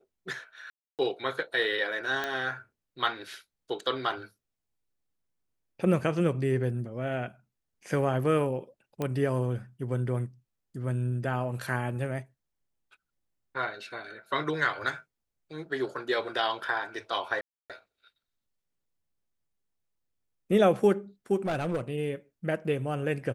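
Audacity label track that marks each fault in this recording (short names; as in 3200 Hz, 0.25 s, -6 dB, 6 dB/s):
0.700000	0.990000	gap 0.288 s
2.240000	2.240000	pop -17 dBFS
9.020000	9.020000	pop -18 dBFS
17.410000	17.700000	gap 0.287 s
21.450000	21.810000	clipped -25 dBFS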